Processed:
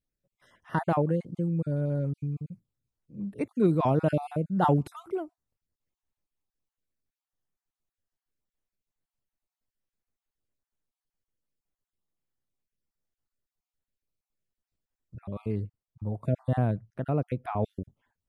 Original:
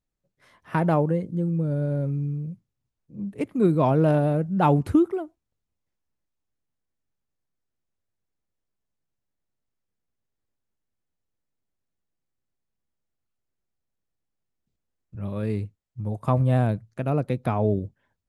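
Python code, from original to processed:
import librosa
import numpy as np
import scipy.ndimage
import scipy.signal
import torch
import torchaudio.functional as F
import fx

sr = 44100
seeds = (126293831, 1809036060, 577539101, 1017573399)

y = fx.spec_dropout(x, sr, seeds[0], share_pct=31)
y = fx.high_shelf(y, sr, hz=2600.0, db=-10.0, at=(15.2, 17.63))
y = y * 10.0 ** (-3.0 / 20.0)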